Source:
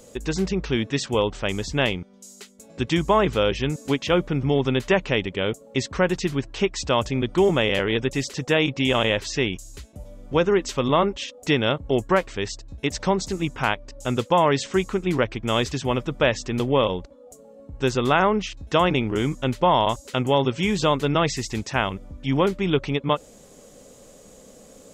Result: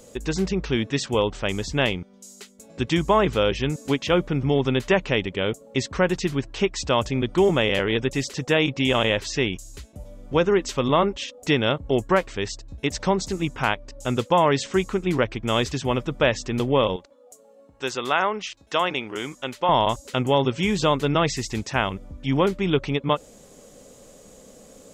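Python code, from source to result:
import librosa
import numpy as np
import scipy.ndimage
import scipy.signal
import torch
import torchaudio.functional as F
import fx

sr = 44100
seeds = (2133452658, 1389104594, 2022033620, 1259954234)

y = fx.highpass(x, sr, hz=780.0, slope=6, at=(16.96, 19.69))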